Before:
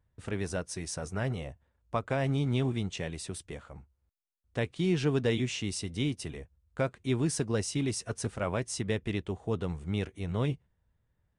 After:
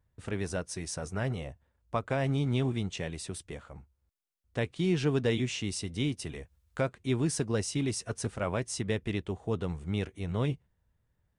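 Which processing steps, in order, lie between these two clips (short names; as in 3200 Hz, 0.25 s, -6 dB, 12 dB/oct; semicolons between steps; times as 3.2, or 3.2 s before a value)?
6.04–6.87 mismatched tape noise reduction encoder only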